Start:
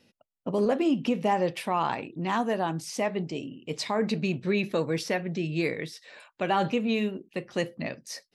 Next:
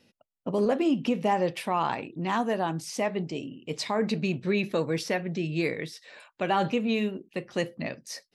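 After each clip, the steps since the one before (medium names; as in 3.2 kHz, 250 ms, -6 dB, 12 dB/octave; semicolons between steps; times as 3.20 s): no audible change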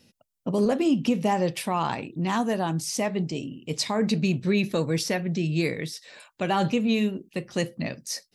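tone controls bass +7 dB, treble +9 dB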